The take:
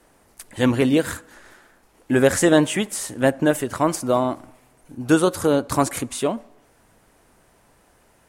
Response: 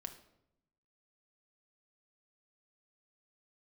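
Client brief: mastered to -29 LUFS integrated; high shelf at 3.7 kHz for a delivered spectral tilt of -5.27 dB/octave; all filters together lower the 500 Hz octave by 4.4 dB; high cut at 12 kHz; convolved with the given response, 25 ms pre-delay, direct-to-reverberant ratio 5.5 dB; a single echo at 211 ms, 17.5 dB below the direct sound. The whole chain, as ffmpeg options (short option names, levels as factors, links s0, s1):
-filter_complex "[0:a]lowpass=12000,equalizer=f=500:t=o:g=-5.5,highshelf=f=3700:g=-4,aecho=1:1:211:0.133,asplit=2[s0][s1];[1:a]atrim=start_sample=2205,adelay=25[s2];[s1][s2]afir=irnorm=-1:irlink=0,volume=0.794[s3];[s0][s3]amix=inputs=2:normalize=0,volume=0.473"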